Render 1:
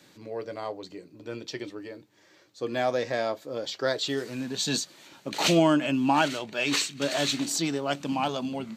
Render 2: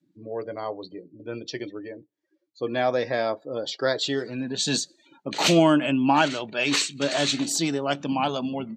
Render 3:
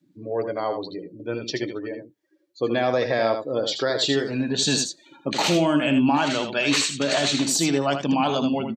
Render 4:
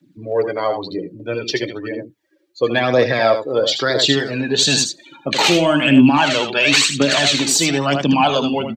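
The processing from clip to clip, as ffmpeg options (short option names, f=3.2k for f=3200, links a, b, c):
-af "afftdn=nr=33:nf=-46,volume=3dB"
-af "alimiter=limit=-17.5dB:level=0:latency=1:release=52,aecho=1:1:79:0.422,volume=5dB"
-filter_complex "[0:a]aphaser=in_gain=1:out_gain=1:delay=2.6:decay=0.46:speed=1:type=triangular,acrossover=split=110|1100|3100[a][b][c][d];[c]crystalizer=i=4:c=0[e];[a][b][e][d]amix=inputs=4:normalize=0,volume=5dB"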